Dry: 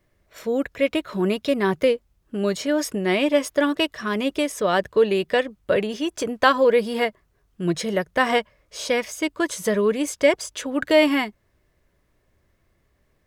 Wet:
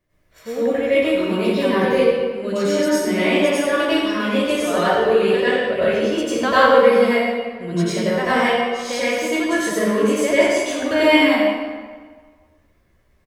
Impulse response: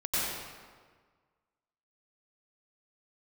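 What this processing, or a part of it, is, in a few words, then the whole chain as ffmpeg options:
stairwell: -filter_complex "[0:a]asplit=2[a][b];[b]adelay=13,volume=-7dB[c];[a][c]amix=inputs=2:normalize=0[d];[1:a]atrim=start_sample=2205[e];[d][e]afir=irnorm=-1:irlink=0,volume=-5.5dB"

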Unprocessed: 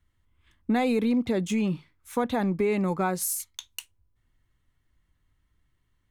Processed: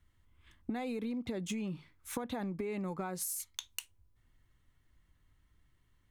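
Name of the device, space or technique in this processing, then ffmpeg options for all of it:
serial compression, leveller first: -af "acompressor=threshold=-29dB:ratio=2.5,acompressor=threshold=-36dB:ratio=6,volume=1dB"

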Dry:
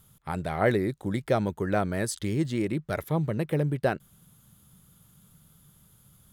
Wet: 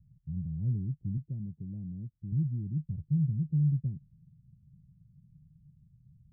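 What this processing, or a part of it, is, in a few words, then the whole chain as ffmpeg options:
the neighbour's flat through the wall: -filter_complex "[0:a]asettb=1/sr,asplit=3[a][b][c];[a]atrim=end=1.174[d];[b]atrim=start=1.17:end=2.32,asetpts=PTS-STARTPTS,afade=t=in:d=0.004:c=qsin,afade=t=out:st=1.146:d=0.004:c=qsin,highpass=f=220:p=1[e];[c]atrim=start=2.316[f];[d][e]acrossfade=d=0.004:c1=hsin:c2=qsin[g];[g][f]acrossfade=d=0.004:c1=qsin:c2=hsin,lowpass=f=160:w=0.5412,lowpass=f=160:w=1.3066,equalizer=f=150:t=o:w=0.77:g=4"

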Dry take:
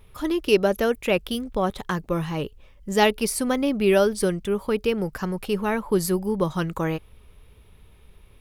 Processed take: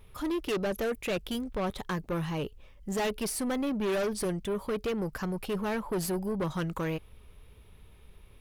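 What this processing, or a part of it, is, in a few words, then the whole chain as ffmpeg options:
saturation between pre-emphasis and de-emphasis: -af "highshelf=f=8.2k:g=6.5,asoftclip=type=tanh:threshold=-24dB,highshelf=f=8.2k:g=-6.5,volume=-2.5dB"

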